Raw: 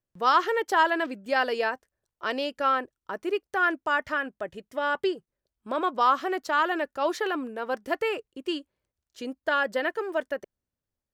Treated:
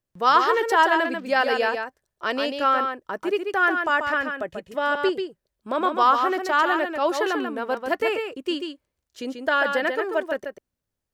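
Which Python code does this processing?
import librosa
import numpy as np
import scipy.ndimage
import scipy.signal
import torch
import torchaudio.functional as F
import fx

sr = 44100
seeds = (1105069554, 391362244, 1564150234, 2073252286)

y = x + 10.0 ** (-6.0 / 20.0) * np.pad(x, (int(139 * sr / 1000.0), 0))[:len(x)]
y = y * 10.0 ** (3.5 / 20.0)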